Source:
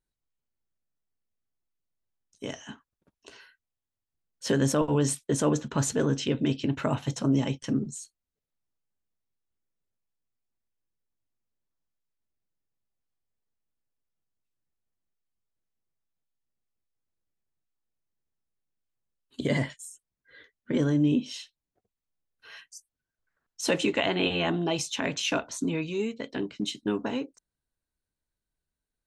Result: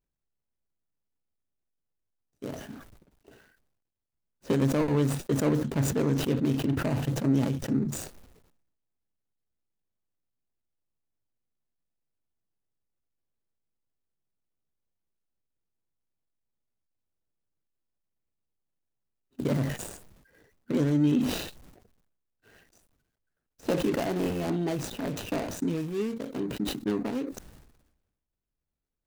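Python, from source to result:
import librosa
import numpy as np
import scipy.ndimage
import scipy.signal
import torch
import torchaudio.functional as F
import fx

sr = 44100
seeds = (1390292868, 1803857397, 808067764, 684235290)

y = scipy.signal.medfilt(x, 41)
y = fx.high_shelf(y, sr, hz=6400.0, db=7.0)
y = fx.sustainer(y, sr, db_per_s=57.0)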